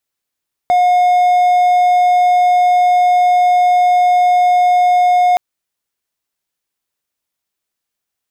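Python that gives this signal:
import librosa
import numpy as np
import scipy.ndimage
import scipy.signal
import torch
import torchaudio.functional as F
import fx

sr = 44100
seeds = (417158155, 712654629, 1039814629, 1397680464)

y = 10.0 ** (-6.0 / 20.0) * (1.0 - 4.0 * np.abs(np.mod(719.0 * (np.arange(round(4.67 * sr)) / sr) + 0.25, 1.0) - 0.5))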